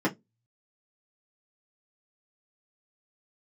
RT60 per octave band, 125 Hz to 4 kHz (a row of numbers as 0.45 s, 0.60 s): 0.30 s, 0.25 s, 0.20 s, 0.10 s, 0.15 s, 0.15 s